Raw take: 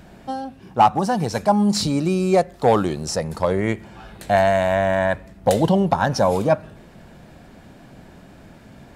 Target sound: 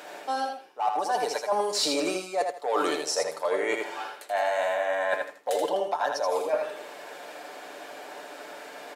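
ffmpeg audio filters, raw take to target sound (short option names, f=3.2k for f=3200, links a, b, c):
-af "highpass=f=430:w=0.5412,highpass=f=430:w=1.3066,aecho=1:1:6.8:0.52,areverse,acompressor=threshold=-31dB:ratio=20,areverse,aecho=1:1:80|160|240:0.562|0.129|0.0297,volume=7dB"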